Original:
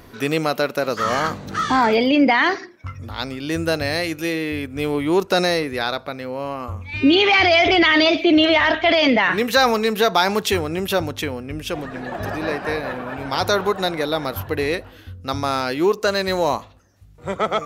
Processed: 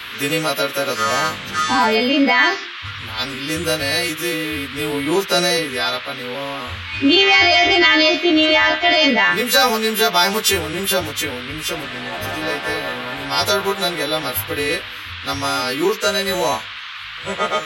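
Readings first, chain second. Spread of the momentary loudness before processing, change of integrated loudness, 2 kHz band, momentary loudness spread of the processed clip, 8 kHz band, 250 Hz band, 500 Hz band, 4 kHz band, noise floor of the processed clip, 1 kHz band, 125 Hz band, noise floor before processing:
14 LU, +2.0 dB, +3.5 dB, 14 LU, +9.0 dB, -1.0 dB, -0.5 dB, +5.5 dB, -32 dBFS, +1.0 dB, -1.5 dB, -45 dBFS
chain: partials quantised in pitch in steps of 2 st; band noise 1.1–3.7 kHz -32 dBFS

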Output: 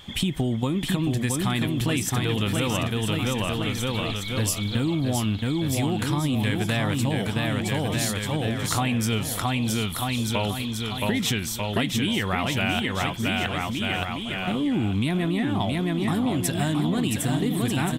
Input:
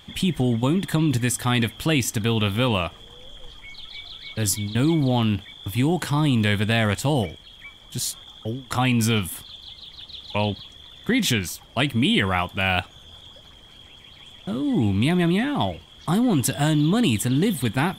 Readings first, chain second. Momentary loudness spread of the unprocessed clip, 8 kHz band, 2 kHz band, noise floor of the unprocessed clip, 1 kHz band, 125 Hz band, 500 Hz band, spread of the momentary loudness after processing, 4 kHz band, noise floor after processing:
17 LU, -0.5 dB, -1.5 dB, -48 dBFS, -1.0 dB, -1.5 dB, -1.5 dB, 3 LU, -1.0 dB, -31 dBFS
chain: bouncing-ball echo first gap 670 ms, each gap 0.85×, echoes 5; compression 5:1, threshold -24 dBFS, peak gain reduction 10 dB; trim +2.5 dB

